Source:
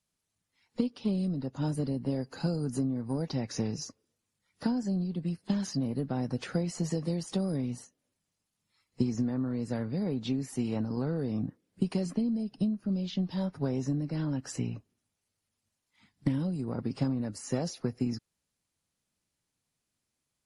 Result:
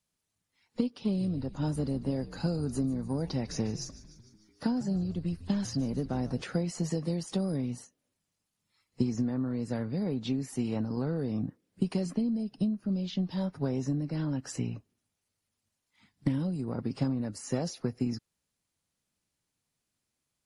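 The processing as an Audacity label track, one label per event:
0.870000	6.420000	echo with shifted repeats 149 ms, feedback 62%, per repeat −86 Hz, level −16 dB

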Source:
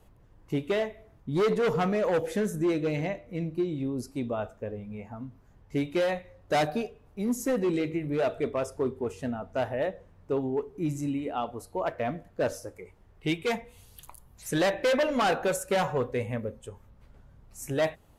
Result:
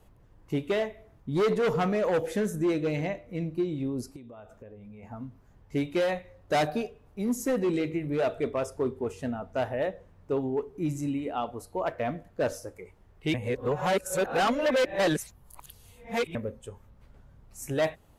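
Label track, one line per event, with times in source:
4.160000	5.030000	downward compressor 12 to 1, threshold −43 dBFS
13.340000	16.350000	reverse

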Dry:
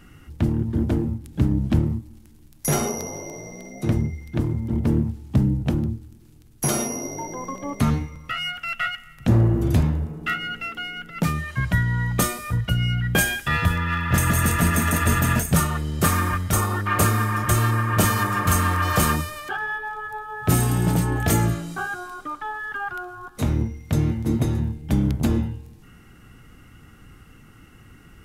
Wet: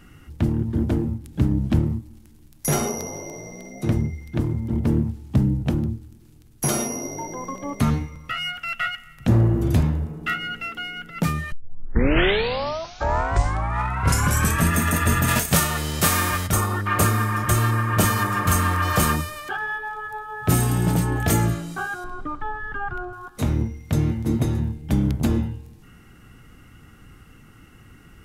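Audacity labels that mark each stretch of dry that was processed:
11.520000	11.520000	tape start 3.20 s
15.270000	16.460000	spectral envelope flattened exponent 0.6
22.040000	23.130000	RIAA equalisation playback

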